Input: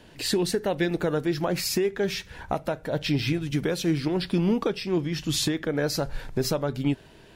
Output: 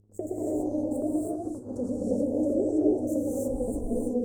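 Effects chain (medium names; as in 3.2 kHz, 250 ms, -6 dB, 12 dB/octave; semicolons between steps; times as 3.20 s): local Wiener filter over 25 samples; tone controls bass +3 dB, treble -12 dB; mains buzz 60 Hz, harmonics 4, -40 dBFS -8 dB/octave; in parallel at +1.5 dB: compression 6:1, threshold -41 dBFS, peak gain reduction 21 dB; on the sum: dynamic bell 360 Hz, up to +4 dB, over -34 dBFS, Q 1.1; speed mistake 45 rpm record played at 78 rpm; elliptic band-stop 480–8000 Hz, stop band 70 dB; gate -30 dBFS, range -45 dB; feedback comb 61 Hz, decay 0.23 s, harmonics all, mix 60%; on a send: repeats whose band climbs or falls 332 ms, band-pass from 3.3 kHz, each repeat 0.7 oct, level -10.5 dB; on the sum: upward compressor, threshold -38 dBFS; gated-style reverb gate 350 ms rising, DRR -6 dB; trim -5.5 dB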